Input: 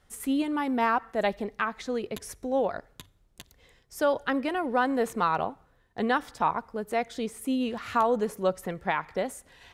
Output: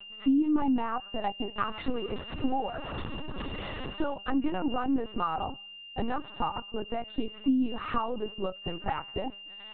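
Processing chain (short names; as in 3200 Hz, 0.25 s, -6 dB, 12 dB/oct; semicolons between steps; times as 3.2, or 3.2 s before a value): 1.57–4.14 zero-crossing step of -34.5 dBFS; high shelf 2200 Hz -7 dB; compressor 6:1, threshold -36 dBFS, peak gain reduction 15.5 dB; small resonant body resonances 280/810/1200 Hz, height 11 dB, ringing for 30 ms; whine 2800 Hz -46 dBFS; air absorption 58 m; LPC vocoder at 8 kHz pitch kept; gain +3 dB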